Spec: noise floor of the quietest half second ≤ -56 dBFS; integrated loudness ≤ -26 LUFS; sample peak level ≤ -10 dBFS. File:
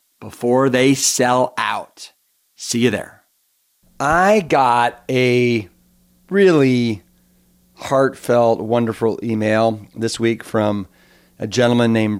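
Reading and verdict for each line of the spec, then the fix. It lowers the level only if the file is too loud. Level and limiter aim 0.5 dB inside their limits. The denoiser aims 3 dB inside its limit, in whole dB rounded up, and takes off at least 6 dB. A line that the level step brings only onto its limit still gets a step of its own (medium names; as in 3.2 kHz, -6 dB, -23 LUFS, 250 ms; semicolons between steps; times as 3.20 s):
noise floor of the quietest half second -64 dBFS: pass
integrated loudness -17.0 LUFS: fail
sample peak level -4.0 dBFS: fail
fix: trim -9.5 dB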